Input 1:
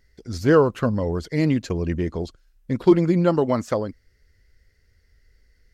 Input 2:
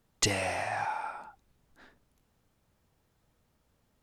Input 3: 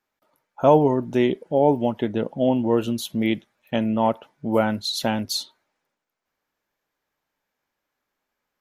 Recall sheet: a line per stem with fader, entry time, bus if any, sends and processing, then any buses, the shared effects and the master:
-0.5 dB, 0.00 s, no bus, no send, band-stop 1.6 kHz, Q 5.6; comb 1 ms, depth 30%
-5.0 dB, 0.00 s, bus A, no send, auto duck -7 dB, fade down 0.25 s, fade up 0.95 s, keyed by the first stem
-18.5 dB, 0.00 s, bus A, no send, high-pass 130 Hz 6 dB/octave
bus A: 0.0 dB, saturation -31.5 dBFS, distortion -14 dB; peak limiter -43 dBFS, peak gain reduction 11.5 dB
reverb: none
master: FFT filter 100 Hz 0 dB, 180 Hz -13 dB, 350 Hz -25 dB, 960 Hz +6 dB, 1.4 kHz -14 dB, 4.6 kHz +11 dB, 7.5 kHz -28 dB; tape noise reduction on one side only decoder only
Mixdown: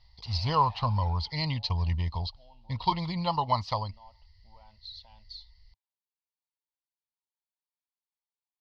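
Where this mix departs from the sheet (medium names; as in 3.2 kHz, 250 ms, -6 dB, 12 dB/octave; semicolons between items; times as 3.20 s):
stem 2 -5.0 dB -> +5.5 dB; stem 3 -18.5 dB -> -25.0 dB; master: missing tape noise reduction on one side only decoder only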